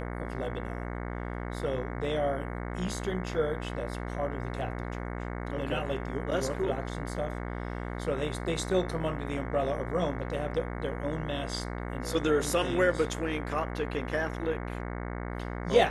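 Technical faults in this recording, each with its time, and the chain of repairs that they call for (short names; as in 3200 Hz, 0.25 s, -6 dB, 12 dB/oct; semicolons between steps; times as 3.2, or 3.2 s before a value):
buzz 60 Hz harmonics 37 -36 dBFS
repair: de-hum 60 Hz, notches 37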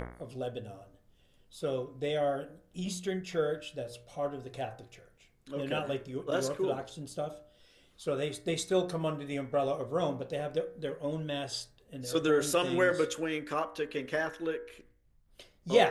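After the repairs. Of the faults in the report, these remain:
none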